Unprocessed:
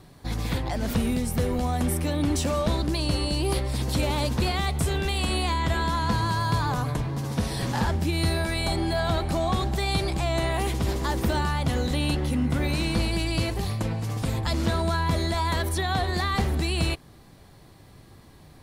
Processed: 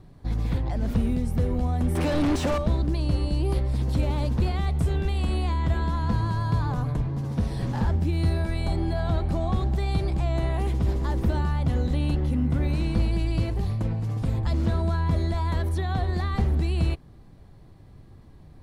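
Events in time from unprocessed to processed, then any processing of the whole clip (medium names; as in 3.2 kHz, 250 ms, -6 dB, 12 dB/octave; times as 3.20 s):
1.95–2.58 s: overdrive pedal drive 30 dB, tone 5.1 kHz, clips at -14.5 dBFS
whole clip: tilt EQ -2.5 dB/octave; trim -6 dB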